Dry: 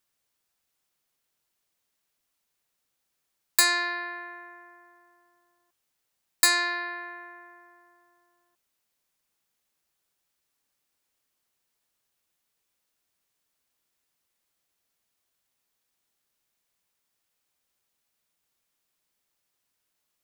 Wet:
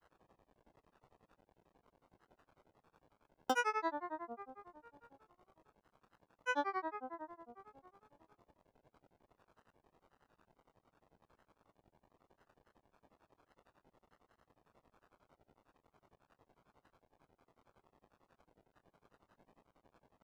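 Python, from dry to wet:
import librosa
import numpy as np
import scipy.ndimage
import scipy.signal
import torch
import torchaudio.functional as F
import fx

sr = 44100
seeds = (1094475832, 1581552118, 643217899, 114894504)

y = fx.dmg_crackle(x, sr, seeds[0], per_s=460.0, level_db=-45.0)
y = scipy.signal.savgol_filter(y, 65, 4, mode='constant')
y = fx.granulator(y, sr, seeds[1], grain_ms=100.0, per_s=11.0, spray_ms=100.0, spread_st=7)
y = F.gain(torch.from_numpy(y), 2.0).numpy()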